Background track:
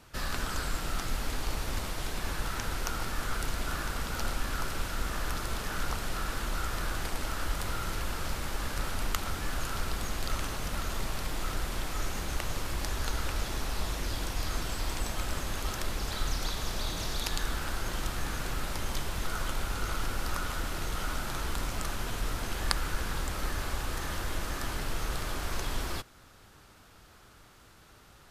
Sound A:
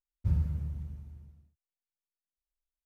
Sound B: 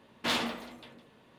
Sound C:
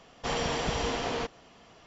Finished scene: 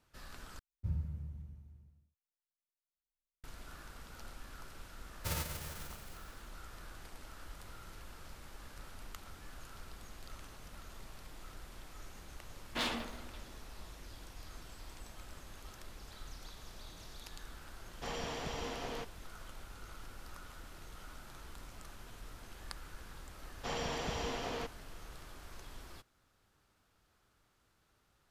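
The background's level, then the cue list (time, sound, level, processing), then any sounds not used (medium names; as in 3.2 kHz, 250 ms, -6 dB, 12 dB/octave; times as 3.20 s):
background track -17.5 dB
0.59 s: replace with A -8.5 dB
5.00 s: add A -10.5 dB + formants flattened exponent 0.3
12.51 s: add B -6 dB
17.78 s: add C -10.5 dB
23.40 s: add C -8 dB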